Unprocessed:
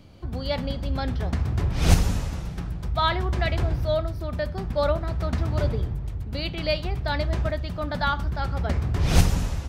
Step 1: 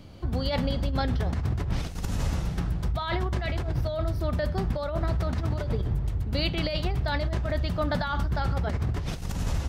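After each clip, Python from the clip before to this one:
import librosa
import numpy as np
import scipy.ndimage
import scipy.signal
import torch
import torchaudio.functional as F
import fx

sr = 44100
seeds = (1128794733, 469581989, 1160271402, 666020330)

y = fx.notch(x, sr, hz=2400.0, q=30.0)
y = fx.over_compress(y, sr, threshold_db=-27.0, ratio=-1.0)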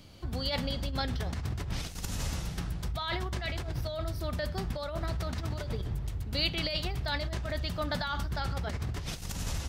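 y = fx.high_shelf(x, sr, hz=2100.0, db=11.0)
y = y * 10.0 ** (-7.0 / 20.0)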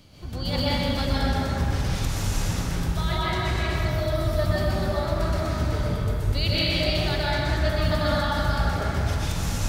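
y = fx.rev_plate(x, sr, seeds[0], rt60_s=3.2, hf_ratio=0.5, predelay_ms=110, drr_db=-8.5)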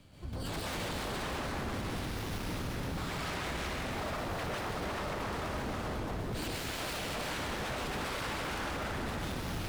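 y = 10.0 ** (-26.5 / 20.0) * (np.abs((x / 10.0 ** (-26.5 / 20.0) + 3.0) % 4.0 - 2.0) - 1.0)
y = y + 10.0 ** (-7.0 / 20.0) * np.pad(y, (int(333 * sr / 1000.0), 0))[:len(y)]
y = fx.running_max(y, sr, window=5)
y = y * 10.0 ** (-5.5 / 20.0)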